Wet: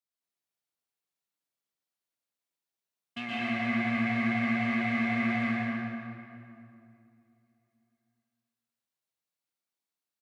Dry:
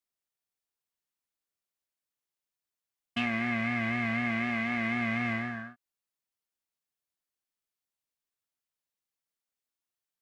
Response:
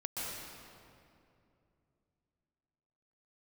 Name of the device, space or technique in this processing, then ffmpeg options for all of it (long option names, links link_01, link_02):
PA in a hall: -filter_complex "[0:a]highpass=120,equalizer=frequency=3900:width_type=o:width=0.38:gain=3,aecho=1:1:118:0.398[link_01];[1:a]atrim=start_sample=2205[link_02];[link_01][link_02]afir=irnorm=-1:irlink=0,volume=-3.5dB"